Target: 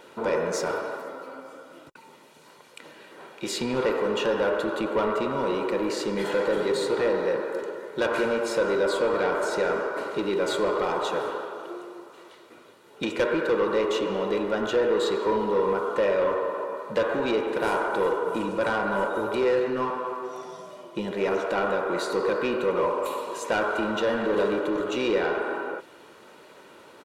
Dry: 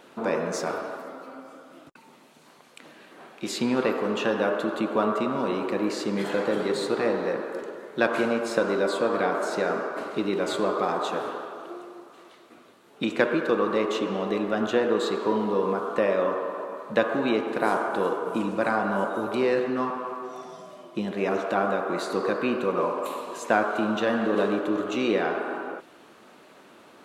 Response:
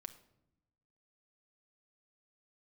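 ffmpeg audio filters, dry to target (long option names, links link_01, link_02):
-af "asoftclip=type=tanh:threshold=-20dB,aecho=1:1:2.1:0.42,volume=1.5dB"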